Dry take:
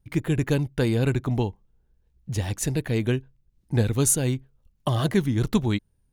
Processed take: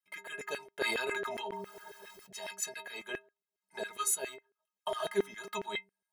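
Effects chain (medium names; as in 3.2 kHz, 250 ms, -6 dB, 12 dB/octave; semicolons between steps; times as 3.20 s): inharmonic resonator 190 Hz, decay 0.29 s, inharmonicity 0.03; LFO high-pass saw down 7.3 Hz 480–2000 Hz; 0.81–2.51 s: decay stretcher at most 21 dB/s; trim +4.5 dB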